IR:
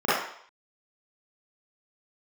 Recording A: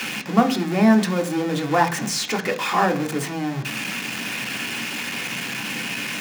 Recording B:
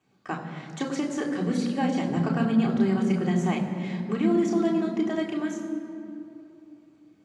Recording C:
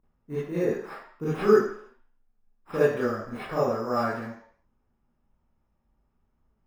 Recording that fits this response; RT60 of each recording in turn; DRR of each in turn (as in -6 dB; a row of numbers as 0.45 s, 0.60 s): C; 0.45 s, 2.8 s, 0.60 s; 3.5 dB, -2.5 dB, -12.0 dB